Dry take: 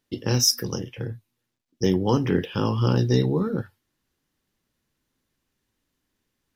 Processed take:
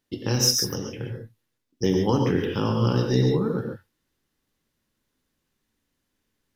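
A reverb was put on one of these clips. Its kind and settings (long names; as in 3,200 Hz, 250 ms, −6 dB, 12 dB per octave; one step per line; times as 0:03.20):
reverb whose tail is shaped and stops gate 160 ms rising, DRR 3 dB
level −1.5 dB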